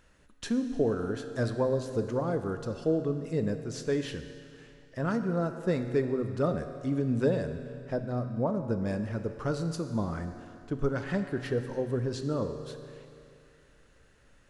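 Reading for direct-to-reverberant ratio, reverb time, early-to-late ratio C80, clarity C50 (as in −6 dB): 7.5 dB, 2.5 s, 9.5 dB, 8.5 dB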